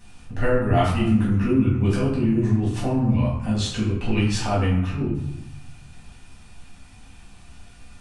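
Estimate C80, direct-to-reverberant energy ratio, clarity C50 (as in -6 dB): 6.0 dB, -7.0 dB, 2.5 dB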